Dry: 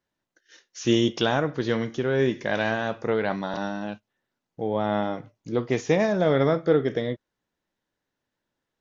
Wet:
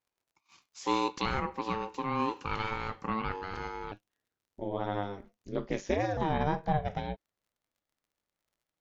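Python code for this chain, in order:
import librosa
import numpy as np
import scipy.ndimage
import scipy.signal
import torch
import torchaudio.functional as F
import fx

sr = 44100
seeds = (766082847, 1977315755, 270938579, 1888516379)

y = fx.dmg_crackle(x, sr, seeds[0], per_s=70.0, level_db=-56.0)
y = fx.ring_mod(y, sr, carrier_hz=fx.steps((0.0, 660.0), (3.92, 99.0), (6.17, 310.0)))
y = y * librosa.db_to_amplitude(-5.5)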